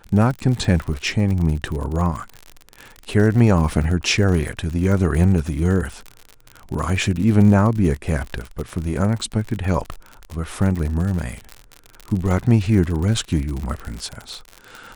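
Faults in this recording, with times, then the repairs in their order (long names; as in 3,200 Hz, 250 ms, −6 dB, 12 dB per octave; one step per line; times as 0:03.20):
surface crackle 59 per second −25 dBFS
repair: click removal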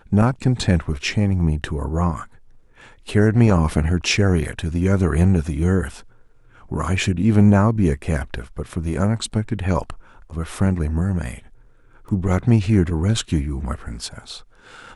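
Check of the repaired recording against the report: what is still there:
none of them is left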